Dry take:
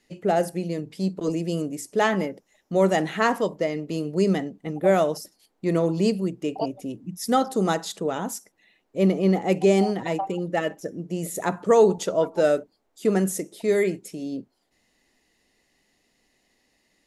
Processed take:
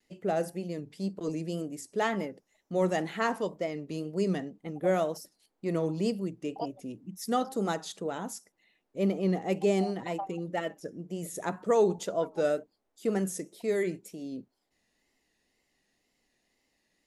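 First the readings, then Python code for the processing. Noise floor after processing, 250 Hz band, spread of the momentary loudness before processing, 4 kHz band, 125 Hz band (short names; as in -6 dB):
-78 dBFS, -7.5 dB, 13 LU, -7.5 dB, -7.5 dB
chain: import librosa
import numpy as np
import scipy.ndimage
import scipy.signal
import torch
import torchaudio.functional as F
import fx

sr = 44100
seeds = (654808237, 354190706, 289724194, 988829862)

y = fx.vibrato(x, sr, rate_hz=2.0, depth_cents=70.0)
y = y * librosa.db_to_amplitude(-7.5)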